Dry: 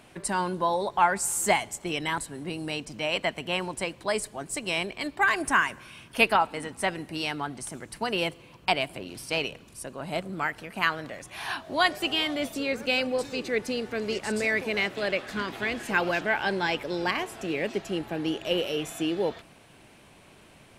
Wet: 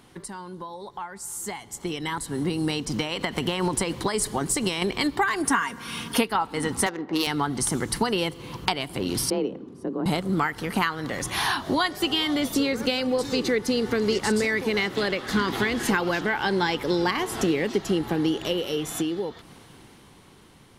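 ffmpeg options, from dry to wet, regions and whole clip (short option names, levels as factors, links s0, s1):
-filter_complex "[0:a]asettb=1/sr,asplit=3[s0][s1][s2];[s0]atrim=end=2.854[s3];[s1]atrim=start=2.85:end=4.82,asetpts=PTS-STARTPTS,afade=t=in:d=0.004:c=qsin,afade=t=out:st=1.966:d=0.004:c=qsin,acompressor=threshold=0.0316:ratio=16:attack=3.2:release=140:knee=1:detection=peak,asoftclip=type=hard:threshold=0.0596[s4];[s2]atrim=start=4.816[s5];[s3][s4]acrossfade=d=0.004:c1=hsin:c2=qsin[s6];[s6][s5]acrossfade=d=0.004:c1=qsin:c2=hsin,asettb=1/sr,asplit=3[s7][s8][s9];[s7]atrim=end=5.454[s10];[s8]atrim=start=5.45:end=6.28,asetpts=PTS-STARTPTS,afade=t=in:d=0.004:c=qsin,afade=t=out:st=0.826:d=0.004:c=qsin,highpass=89,aecho=1:1:4.3:0.55,atrim=end_sample=36603[s11];[s9]atrim=start=6.276[s12];[s10][s11]acrossfade=d=0.004:c1=hsin:c2=qsin[s13];[s13][s12]acrossfade=d=0.004:c1=qsin:c2=hsin,asettb=1/sr,asplit=3[s14][s15][s16];[s14]atrim=end=6.864[s17];[s15]atrim=start=6.86:end=7.27,asetpts=PTS-STARTPTS,afade=t=in:d=0.004:c=qsin,afade=t=out:st=0.406:d=0.004:c=qsin,highpass=340,lowpass=5400,adynamicsmooth=sensitivity=5.5:basefreq=1100[s18];[s16]atrim=start=7.266[s19];[s17][s18]acrossfade=d=0.004:c1=hsin:c2=qsin[s20];[s20][s19]acrossfade=d=0.004:c1=qsin:c2=hsin,asettb=1/sr,asplit=3[s21][s22][s23];[s21]atrim=end=9.304[s24];[s22]atrim=start=9.3:end=10.06,asetpts=PTS-STARTPTS,afade=t=in:d=0.004:c=qsin,afade=t=out:st=0.756:d=0.004:c=qsin,bandpass=f=290:t=q:w=1.4,afreqshift=30[s25];[s23]atrim=start=10.056[s26];[s24][s25]acrossfade=d=0.004:c1=hsin:c2=qsin[s27];[s27][s26]acrossfade=d=0.004:c1=qsin:c2=hsin,acompressor=threshold=0.0158:ratio=6,equalizer=f=630:t=o:w=0.33:g=-12,equalizer=f=1600:t=o:w=0.33:g=-4,equalizer=f=2500:t=o:w=0.33:g=-10,equalizer=f=8000:t=o:w=0.33:g=-4,dynaudnorm=f=400:g=11:m=5.62,volume=1.26"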